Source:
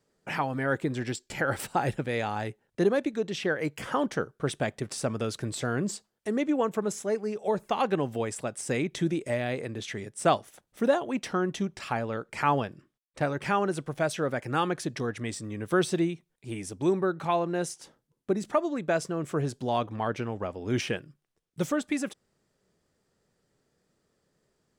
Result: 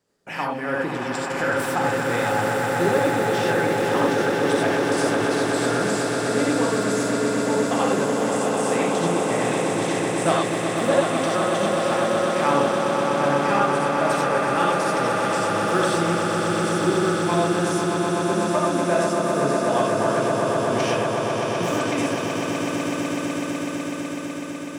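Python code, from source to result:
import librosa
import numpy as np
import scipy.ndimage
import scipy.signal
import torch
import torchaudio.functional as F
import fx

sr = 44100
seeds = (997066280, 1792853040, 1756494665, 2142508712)

y = fx.low_shelf(x, sr, hz=110.0, db=-8.0)
y = fx.echo_swell(y, sr, ms=125, loudest=8, wet_db=-7.0)
y = fx.rev_gated(y, sr, seeds[0], gate_ms=110, shape='rising', drr_db=-1.0)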